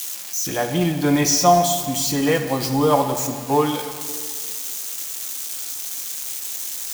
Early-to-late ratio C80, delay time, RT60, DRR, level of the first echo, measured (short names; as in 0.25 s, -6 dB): 9.5 dB, none, 1.8 s, 6.0 dB, none